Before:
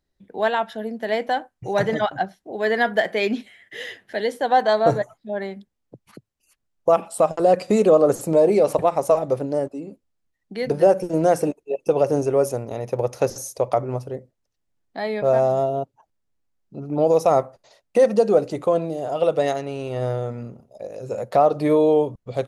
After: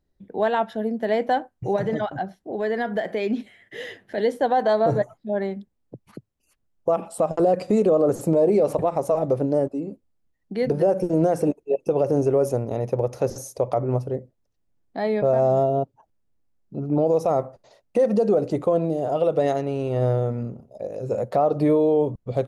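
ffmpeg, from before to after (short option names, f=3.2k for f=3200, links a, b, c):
-filter_complex "[0:a]asettb=1/sr,asplit=3[a][b][c];[a]atrim=end=1.764[d];[b]atrim=start=1.76:end=4.18,asetpts=PTS-STARTPTS,afade=t=in:d=0.004:c=qsin,afade=t=out:st=2.416:d=0.004:c=qsin,acompressor=threshold=-27dB:ratio=2:attack=3.2:release=140:knee=1:detection=peak[e];[c]atrim=start=4.176[f];[d][e]acrossfade=d=0.004:c1=hsin:c2=qsin[g];[g][f]acrossfade=d=0.004:c1=qsin:c2=hsin,tiltshelf=f=930:g=5,alimiter=limit=-11.5dB:level=0:latency=1:release=83"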